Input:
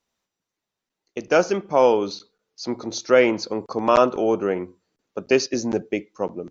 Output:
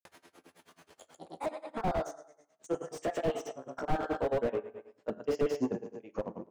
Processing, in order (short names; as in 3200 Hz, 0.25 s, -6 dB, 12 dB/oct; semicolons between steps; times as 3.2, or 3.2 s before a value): gliding pitch shift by +10 st ending unshifted; HPF 100 Hz; high shelf 4300 Hz -11.5 dB; upward compressor, threshold -30 dBFS; feedback echo 66 ms, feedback 57%, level -16 dB; grains 0.1 s, grains 9.3/s, pitch spread up and down by 0 st; reverb RT60 0.70 s, pre-delay 5 ms, DRR 16.5 dB; slew limiter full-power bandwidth 25 Hz